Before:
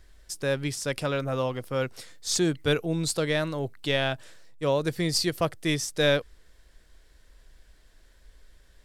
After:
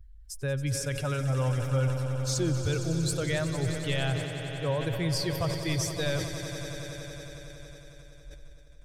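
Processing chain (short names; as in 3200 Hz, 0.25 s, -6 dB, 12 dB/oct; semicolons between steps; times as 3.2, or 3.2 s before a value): per-bin expansion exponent 1.5; resonant low shelf 150 Hz +9 dB, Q 3; limiter -21.5 dBFS, peak gain reduction 9.5 dB; swelling echo 92 ms, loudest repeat 5, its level -13.5 dB; sustainer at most 60 dB/s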